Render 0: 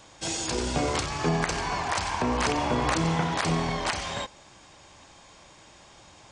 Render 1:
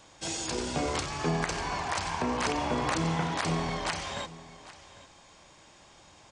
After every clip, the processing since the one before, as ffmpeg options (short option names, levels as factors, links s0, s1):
-af "bandreject=f=60:t=h:w=6,bandreject=f=120:t=h:w=6,aecho=1:1:801:0.126,volume=0.668"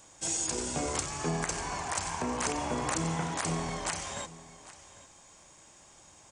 -af "highshelf=f=5700:t=q:w=1.5:g=8.5,volume=0.708"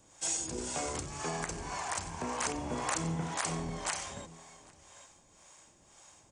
-filter_complex "[0:a]acrossover=split=490[s0][s1];[s0]aeval=exprs='val(0)*(1-0.7/2+0.7/2*cos(2*PI*1.9*n/s))':c=same[s2];[s1]aeval=exprs='val(0)*(1-0.7/2-0.7/2*cos(2*PI*1.9*n/s))':c=same[s3];[s2][s3]amix=inputs=2:normalize=0"